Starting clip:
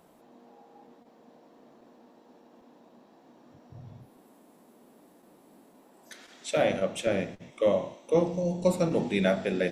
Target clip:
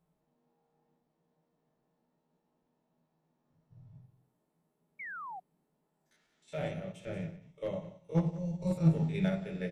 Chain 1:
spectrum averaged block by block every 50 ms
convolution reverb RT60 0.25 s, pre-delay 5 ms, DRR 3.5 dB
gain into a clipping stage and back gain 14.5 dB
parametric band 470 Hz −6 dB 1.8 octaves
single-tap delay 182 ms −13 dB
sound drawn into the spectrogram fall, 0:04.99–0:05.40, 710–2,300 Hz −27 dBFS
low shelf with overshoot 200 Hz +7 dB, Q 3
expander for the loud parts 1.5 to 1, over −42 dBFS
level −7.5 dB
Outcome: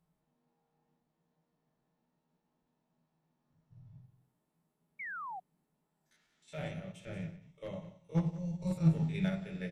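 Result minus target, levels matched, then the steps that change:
500 Hz band −4.5 dB
remove: parametric band 470 Hz −6 dB 1.8 octaves

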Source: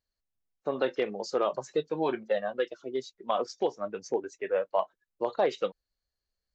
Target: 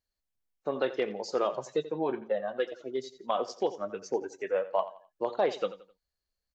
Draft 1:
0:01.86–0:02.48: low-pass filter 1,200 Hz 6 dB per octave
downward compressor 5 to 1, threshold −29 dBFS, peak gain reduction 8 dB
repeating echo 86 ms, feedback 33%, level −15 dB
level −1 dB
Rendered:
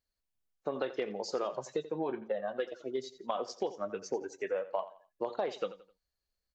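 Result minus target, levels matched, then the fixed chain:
downward compressor: peak gain reduction +8 dB
0:01.86–0:02.48: low-pass filter 1,200 Hz 6 dB per octave
repeating echo 86 ms, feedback 33%, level −15 dB
level −1 dB

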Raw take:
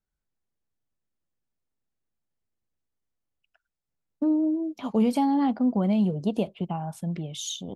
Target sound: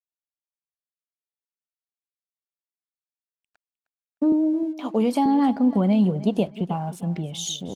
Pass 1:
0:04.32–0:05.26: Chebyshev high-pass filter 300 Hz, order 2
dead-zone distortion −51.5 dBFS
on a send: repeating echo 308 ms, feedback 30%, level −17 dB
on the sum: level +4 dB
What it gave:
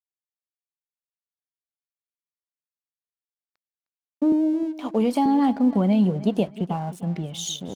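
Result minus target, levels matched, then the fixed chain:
dead-zone distortion: distortion +9 dB
0:04.32–0:05.26: Chebyshev high-pass filter 300 Hz, order 2
dead-zone distortion −61 dBFS
on a send: repeating echo 308 ms, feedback 30%, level −17 dB
on the sum: level +4 dB

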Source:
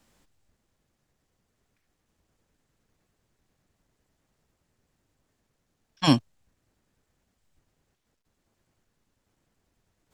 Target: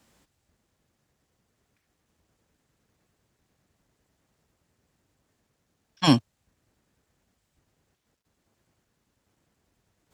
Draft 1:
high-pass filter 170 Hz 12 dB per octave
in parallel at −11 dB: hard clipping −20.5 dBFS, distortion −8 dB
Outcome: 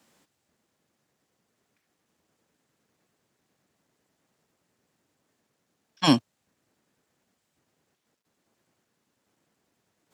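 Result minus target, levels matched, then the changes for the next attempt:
125 Hz band −3.5 dB
change: high-pass filter 47 Hz 12 dB per octave

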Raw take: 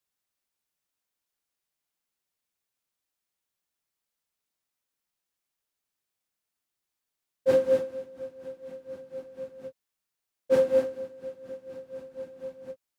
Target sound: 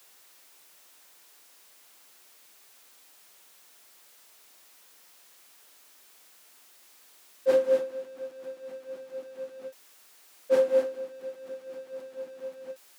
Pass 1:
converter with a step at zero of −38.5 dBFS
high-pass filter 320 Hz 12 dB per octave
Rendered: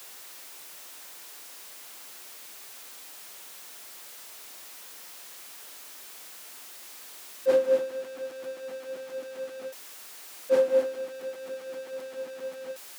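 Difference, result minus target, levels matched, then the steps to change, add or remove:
converter with a step at zero: distortion +11 dB
change: converter with a step at zero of −50 dBFS

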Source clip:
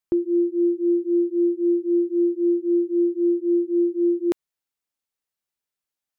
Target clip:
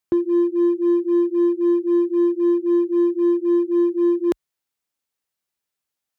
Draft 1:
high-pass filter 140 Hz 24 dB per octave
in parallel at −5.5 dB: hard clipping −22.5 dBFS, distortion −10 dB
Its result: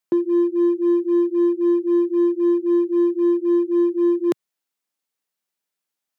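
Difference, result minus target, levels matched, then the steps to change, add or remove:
125 Hz band −3.0 dB
change: high-pass filter 44 Hz 24 dB per octave

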